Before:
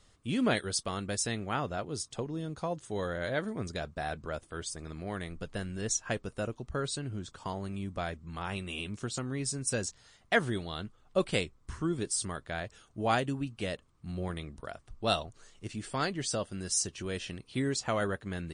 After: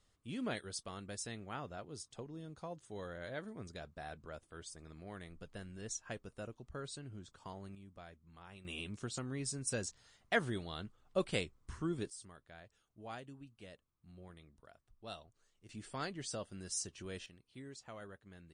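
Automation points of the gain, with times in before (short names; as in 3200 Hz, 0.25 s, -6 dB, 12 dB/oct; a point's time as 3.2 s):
-11.5 dB
from 7.75 s -18.5 dB
from 8.65 s -6 dB
from 12.1 s -19 dB
from 15.69 s -9.5 dB
from 17.26 s -19.5 dB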